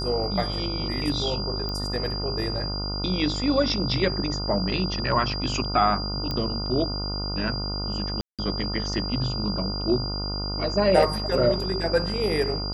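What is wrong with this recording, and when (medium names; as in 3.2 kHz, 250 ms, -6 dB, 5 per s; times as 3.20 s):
buzz 50 Hz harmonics 29 -31 dBFS
whine 4.8 kHz -31 dBFS
1.69 s: pop -19 dBFS
6.31 s: pop -15 dBFS
8.21–8.39 s: dropout 177 ms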